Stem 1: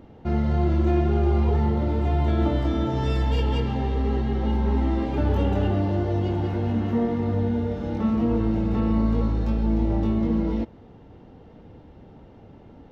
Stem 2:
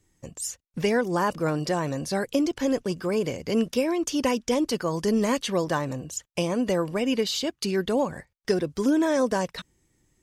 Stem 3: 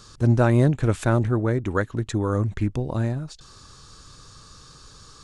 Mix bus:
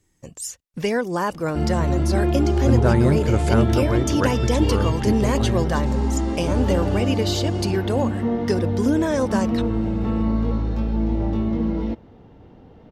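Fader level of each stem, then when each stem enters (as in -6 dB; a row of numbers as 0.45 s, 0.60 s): +0.5 dB, +1.0 dB, -0.5 dB; 1.30 s, 0.00 s, 2.45 s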